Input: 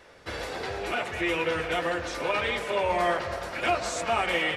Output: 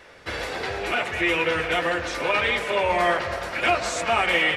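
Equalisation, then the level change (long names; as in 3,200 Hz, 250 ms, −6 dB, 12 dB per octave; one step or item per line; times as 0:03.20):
parametric band 2,200 Hz +4 dB 1.4 octaves
+3.0 dB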